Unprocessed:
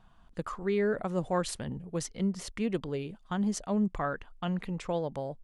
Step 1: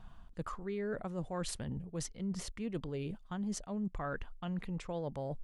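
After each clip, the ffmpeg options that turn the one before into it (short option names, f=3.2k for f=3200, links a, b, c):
-af "lowshelf=f=140:g=7.5,areverse,acompressor=threshold=-40dB:ratio=4,areverse,volume=2.5dB"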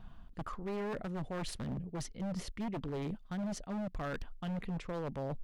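-af "equalizer=f=250:t=o:w=1:g=3,equalizer=f=1k:t=o:w=1:g=-3,equalizer=f=8k:t=o:w=1:g=-8,aeval=exprs='0.0211*(abs(mod(val(0)/0.0211+3,4)-2)-1)':c=same,volume=1.5dB"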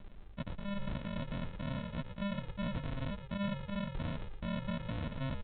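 -filter_complex "[0:a]aresample=8000,acrusher=samples=20:mix=1:aa=0.000001,aresample=44100,asplit=5[a][b][c][d][e];[b]adelay=115,afreqshift=-59,volume=-8.5dB[f];[c]adelay=230,afreqshift=-118,volume=-18.1dB[g];[d]adelay=345,afreqshift=-177,volume=-27.8dB[h];[e]adelay=460,afreqshift=-236,volume=-37.4dB[i];[a][f][g][h][i]amix=inputs=5:normalize=0"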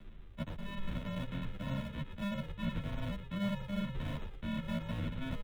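-filter_complex "[0:a]acrossover=split=160|600|920[a][b][c][d];[c]acrusher=samples=31:mix=1:aa=0.000001:lfo=1:lforange=49.6:lforate=1.6[e];[a][b][e][d]amix=inputs=4:normalize=0,asplit=2[f][g];[g]adelay=10.8,afreqshift=0.46[h];[f][h]amix=inputs=2:normalize=1,volume=3.5dB"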